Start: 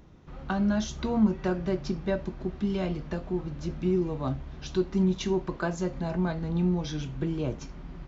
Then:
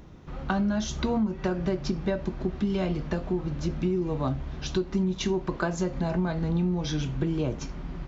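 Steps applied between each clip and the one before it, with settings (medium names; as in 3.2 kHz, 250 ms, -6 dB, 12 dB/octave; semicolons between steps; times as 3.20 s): compression 10:1, threshold -28 dBFS, peak gain reduction 11.5 dB; trim +5.5 dB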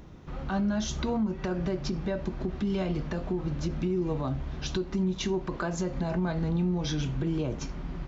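peak limiter -21 dBFS, peak gain reduction 9.5 dB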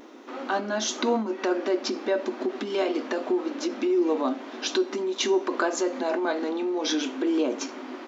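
vibrato 0.44 Hz 19 cents; brick-wall FIR high-pass 230 Hz; de-hum 402.9 Hz, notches 27; trim +8 dB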